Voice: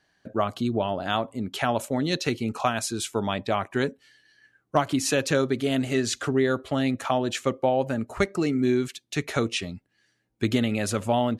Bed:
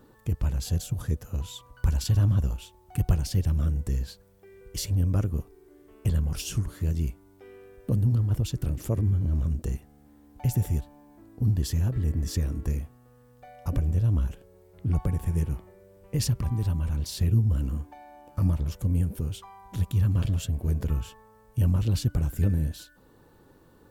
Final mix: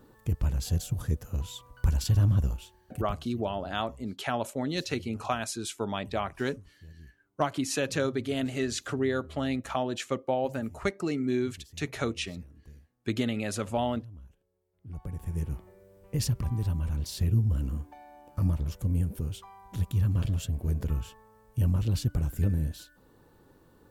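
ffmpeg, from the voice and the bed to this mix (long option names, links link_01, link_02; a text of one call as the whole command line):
ffmpeg -i stem1.wav -i stem2.wav -filter_complex "[0:a]adelay=2650,volume=-5.5dB[link_01];[1:a]volume=19.5dB,afade=type=out:start_time=2.45:duration=0.77:silence=0.0794328,afade=type=in:start_time=14.81:duration=0.87:silence=0.0944061[link_02];[link_01][link_02]amix=inputs=2:normalize=0" out.wav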